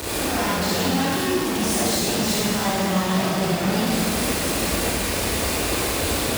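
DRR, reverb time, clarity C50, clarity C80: −8.5 dB, 2.2 s, −5.5 dB, −2.0 dB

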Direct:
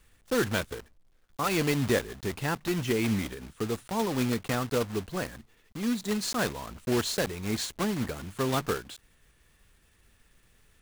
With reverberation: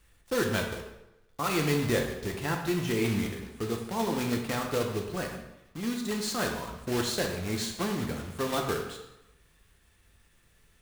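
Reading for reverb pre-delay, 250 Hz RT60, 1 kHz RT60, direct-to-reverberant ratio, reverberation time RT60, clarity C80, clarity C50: 4 ms, 0.95 s, 1.0 s, 2.0 dB, 0.95 s, 8.0 dB, 5.5 dB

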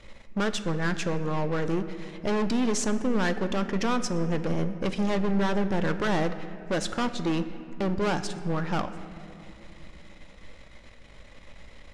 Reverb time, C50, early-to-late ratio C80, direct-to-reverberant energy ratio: 2.7 s, 11.5 dB, 12.5 dB, 9.5 dB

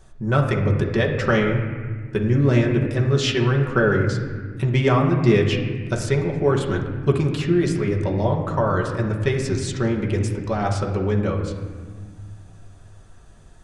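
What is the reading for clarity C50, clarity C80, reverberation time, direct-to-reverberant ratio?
5.5 dB, 7.0 dB, 1.6 s, −1.5 dB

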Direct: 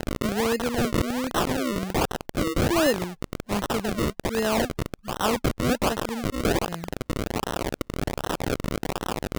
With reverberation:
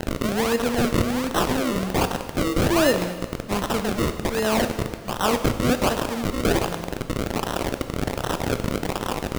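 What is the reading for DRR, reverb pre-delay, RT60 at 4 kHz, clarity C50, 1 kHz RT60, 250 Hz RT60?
7.5 dB, 7 ms, 1.5 s, 9.5 dB, 1.6 s, 1.6 s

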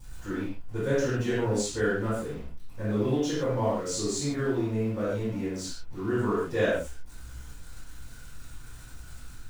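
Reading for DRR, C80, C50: −14.0 dB, 3.0 dB, −0.5 dB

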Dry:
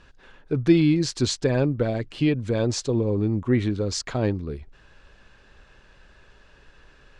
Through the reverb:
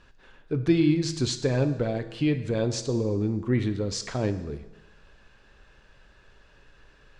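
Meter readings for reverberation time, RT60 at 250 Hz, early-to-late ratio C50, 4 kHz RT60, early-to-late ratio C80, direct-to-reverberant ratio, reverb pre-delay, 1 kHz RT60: 1.1 s, 1.1 s, 12.0 dB, 1.1 s, 13.5 dB, 9.0 dB, 6 ms, 1.1 s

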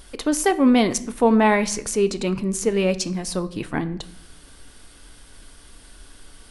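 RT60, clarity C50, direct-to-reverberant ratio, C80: 0.65 s, 17.0 dB, 11.0 dB, 20.0 dB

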